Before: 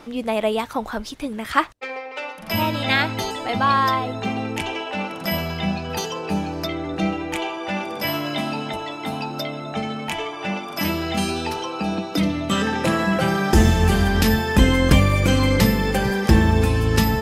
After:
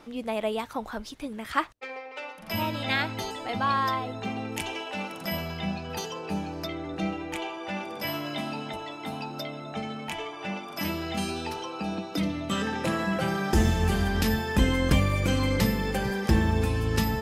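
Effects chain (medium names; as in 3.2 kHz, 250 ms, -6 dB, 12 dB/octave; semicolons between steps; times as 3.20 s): 4.52–5.24 s: treble shelf 5.7 kHz +10.5 dB; trim -7.5 dB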